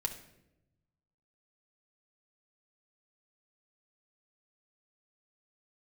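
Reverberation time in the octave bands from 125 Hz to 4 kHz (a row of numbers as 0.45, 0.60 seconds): 1.7, 1.3, 1.1, 0.70, 0.70, 0.60 seconds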